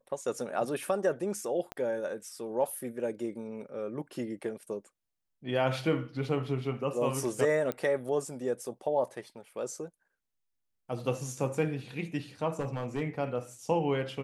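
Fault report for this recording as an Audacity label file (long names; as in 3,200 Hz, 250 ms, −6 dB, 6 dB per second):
1.720000	1.720000	click −22 dBFS
7.720000	7.720000	click −18 dBFS
12.590000	13.020000	clipping −28 dBFS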